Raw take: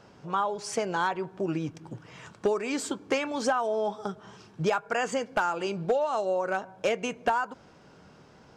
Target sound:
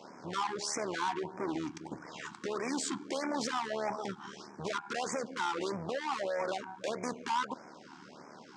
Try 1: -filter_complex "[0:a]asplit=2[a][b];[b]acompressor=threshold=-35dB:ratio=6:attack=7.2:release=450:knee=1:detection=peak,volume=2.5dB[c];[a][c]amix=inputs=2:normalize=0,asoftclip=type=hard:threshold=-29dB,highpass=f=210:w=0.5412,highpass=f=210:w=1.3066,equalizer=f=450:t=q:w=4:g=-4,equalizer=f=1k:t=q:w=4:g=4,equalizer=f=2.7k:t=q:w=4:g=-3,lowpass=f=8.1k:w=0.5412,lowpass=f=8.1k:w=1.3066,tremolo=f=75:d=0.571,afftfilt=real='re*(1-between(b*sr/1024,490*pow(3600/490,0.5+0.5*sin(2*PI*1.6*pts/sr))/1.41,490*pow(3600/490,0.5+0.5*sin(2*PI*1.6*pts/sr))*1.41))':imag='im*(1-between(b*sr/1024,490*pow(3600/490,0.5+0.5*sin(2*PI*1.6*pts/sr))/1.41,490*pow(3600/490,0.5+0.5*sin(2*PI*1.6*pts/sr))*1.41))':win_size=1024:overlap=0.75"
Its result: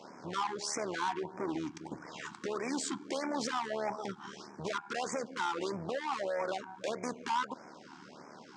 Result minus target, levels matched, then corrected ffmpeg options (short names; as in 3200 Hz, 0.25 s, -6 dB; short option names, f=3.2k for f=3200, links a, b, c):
compressor: peak gain reduction +6.5 dB
-filter_complex "[0:a]asplit=2[a][b];[b]acompressor=threshold=-27dB:ratio=6:attack=7.2:release=450:knee=1:detection=peak,volume=2.5dB[c];[a][c]amix=inputs=2:normalize=0,asoftclip=type=hard:threshold=-29dB,highpass=f=210:w=0.5412,highpass=f=210:w=1.3066,equalizer=f=450:t=q:w=4:g=-4,equalizer=f=1k:t=q:w=4:g=4,equalizer=f=2.7k:t=q:w=4:g=-3,lowpass=f=8.1k:w=0.5412,lowpass=f=8.1k:w=1.3066,tremolo=f=75:d=0.571,afftfilt=real='re*(1-between(b*sr/1024,490*pow(3600/490,0.5+0.5*sin(2*PI*1.6*pts/sr))/1.41,490*pow(3600/490,0.5+0.5*sin(2*PI*1.6*pts/sr))*1.41))':imag='im*(1-between(b*sr/1024,490*pow(3600/490,0.5+0.5*sin(2*PI*1.6*pts/sr))/1.41,490*pow(3600/490,0.5+0.5*sin(2*PI*1.6*pts/sr))*1.41))':win_size=1024:overlap=0.75"